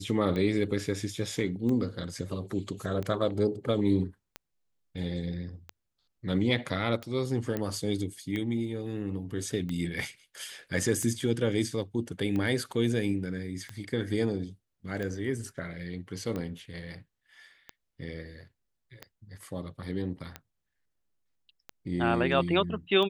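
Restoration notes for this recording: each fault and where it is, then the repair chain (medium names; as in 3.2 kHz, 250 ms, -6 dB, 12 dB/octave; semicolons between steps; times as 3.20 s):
tick 45 rpm -22 dBFS
7.57 s: pop -18 dBFS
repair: de-click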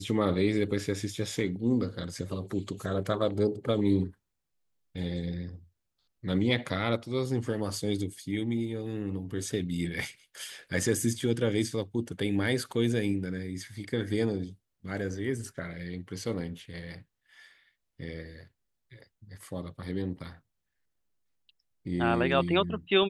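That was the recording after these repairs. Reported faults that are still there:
nothing left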